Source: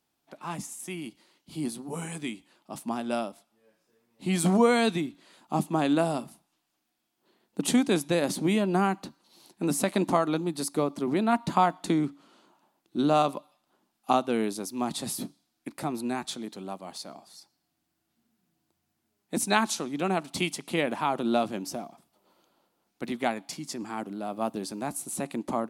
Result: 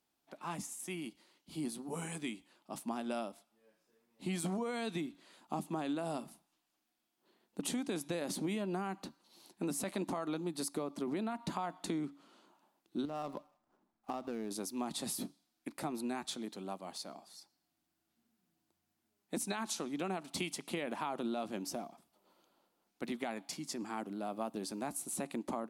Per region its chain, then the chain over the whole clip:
13.05–14.51 median filter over 15 samples + low shelf 95 Hz +11 dB + compressor 4:1, threshold -31 dBFS
whole clip: bell 120 Hz -8 dB 0.5 oct; limiter -18 dBFS; compressor, threshold -29 dBFS; gain -4.5 dB

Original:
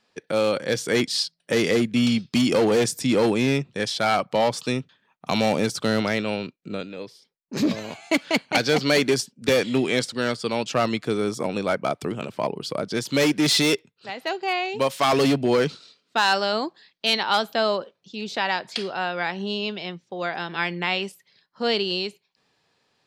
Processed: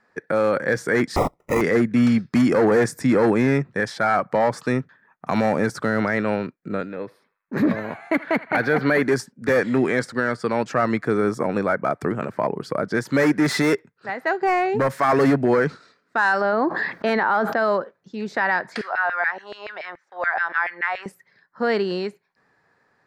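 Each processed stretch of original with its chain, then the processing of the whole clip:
1.16–1.61 high shelf 2900 Hz +11 dB + sample-rate reducer 4400 Hz + Butterworth band-stop 1600 Hz, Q 2
6.95–9.03 band shelf 6300 Hz -11 dB 1 oct + narrowing echo 80 ms, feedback 61%, band-pass 1700 Hz, level -18.5 dB
14.41–15 low shelf 270 Hz +10.5 dB + overloaded stage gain 17.5 dB + three-band squash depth 40%
16.41–17.57 HPF 690 Hz 6 dB/oct + tilt -4.5 dB/oct + fast leveller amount 70%
18.81–21.06 compressor 2.5:1, threshold -29 dBFS + LFO high-pass saw down 7 Hz 560–2200 Hz
whole clip: resonant high shelf 2300 Hz -9.5 dB, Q 3; limiter -14.5 dBFS; gain +4 dB

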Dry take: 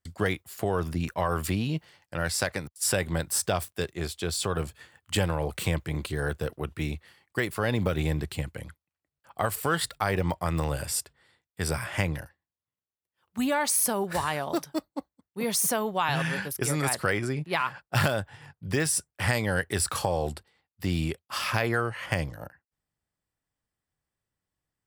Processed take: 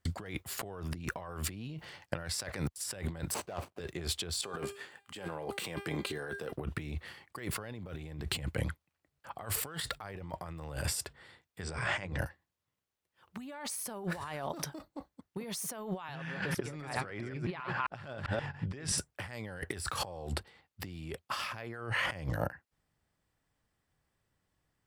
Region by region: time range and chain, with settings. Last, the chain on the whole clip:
3.34–3.8 median filter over 25 samples + HPF 330 Hz 6 dB/oct
4.41–6.52 HPF 220 Hz + resonator 400 Hz, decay 0.43 s, mix 70% + negative-ratio compressor -47 dBFS
11.61–12.19 Chebyshev low-pass 8700 Hz, order 10 + notches 50/100/150/200/250/300/350/400/450/500 Hz
16.15–18.98 reverse delay 0.132 s, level -9 dB + air absorption 75 m
whole clip: high shelf 5900 Hz -7.5 dB; negative-ratio compressor -39 dBFS, ratio -1

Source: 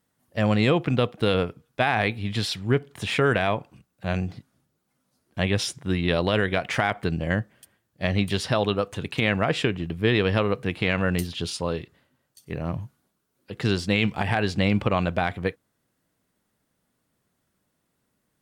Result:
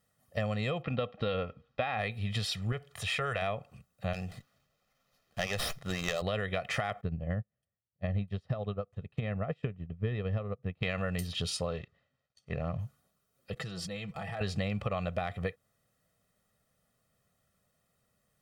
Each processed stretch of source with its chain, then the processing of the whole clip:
0.82–1.99 LPF 4400 Hz 24 dB/oct + comb 3.7 ms, depth 35%
2.72–3.42 HPF 41 Hz + bell 240 Hz -11.5 dB 1.7 oct + transient shaper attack -3 dB, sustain +1 dB
4.13–6.22 tilt +2 dB/oct + running maximum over 5 samples
7.01–10.83 LPF 1400 Hz 6 dB/oct + low shelf 300 Hz +8 dB + upward expander 2.5:1, over -32 dBFS
11.66–12.79 G.711 law mismatch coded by A + LPF 4300 Hz
13.53–14.41 dynamic EQ 2700 Hz, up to -5 dB, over -35 dBFS, Q 1.6 + level quantiser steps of 19 dB + comb 6.1 ms, depth 69%
whole clip: comb 1.6 ms, depth 72%; compressor 5:1, threshold -27 dBFS; gain -3 dB

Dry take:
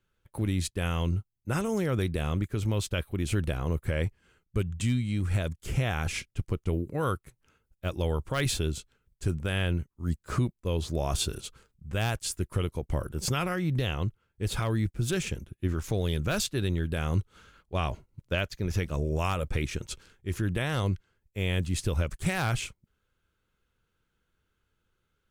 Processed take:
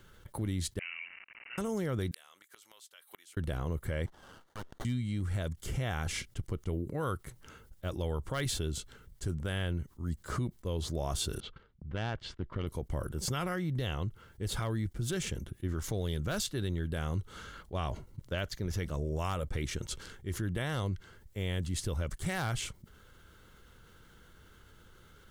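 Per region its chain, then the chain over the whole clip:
0.79–1.58 zero-crossing step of -32.5 dBFS + Butterworth band-pass 2800 Hz, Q 2.6 + careless resampling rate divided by 8×, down none, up filtered
2.11–3.37 HPF 910 Hz + tilt +2.5 dB/oct + flipped gate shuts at -33 dBFS, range -40 dB
4.06–4.85 HPF 760 Hz 24 dB/oct + running maximum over 17 samples
11.4–12.67 LPF 3500 Hz 24 dB/oct + gate -54 dBFS, range -20 dB + tube stage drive 22 dB, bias 0.75
whole clip: notch 2500 Hz, Q 7; fast leveller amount 50%; gain -8 dB

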